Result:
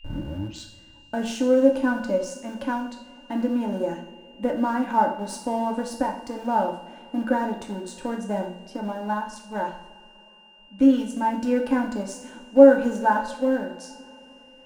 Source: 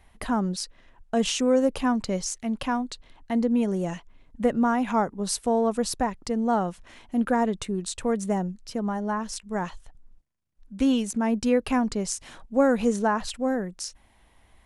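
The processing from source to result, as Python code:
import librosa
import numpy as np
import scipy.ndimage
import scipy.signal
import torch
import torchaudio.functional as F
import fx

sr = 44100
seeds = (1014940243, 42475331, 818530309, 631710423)

p1 = fx.tape_start_head(x, sr, length_s=0.75)
p2 = np.where(np.abs(p1) >= 10.0 ** (-24.0 / 20.0), p1, 0.0)
p3 = p1 + (p2 * 10.0 ** (-9.5 / 20.0))
p4 = fx.small_body(p3, sr, hz=(310.0, 560.0, 860.0, 1500.0), ring_ms=45, db=17)
p5 = p4 + 10.0 ** (-39.0 / 20.0) * np.sin(2.0 * np.pi * 2800.0 * np.arange(len(p4)) / sr)
p6 = fx.rev_double_slope(p5, sr, seeds[0], early_s=0.57, late_s=3.7, knee_db=-21, drr_db=1.5)
y = p6 * 10.0 ** (-12.0 / 20.0)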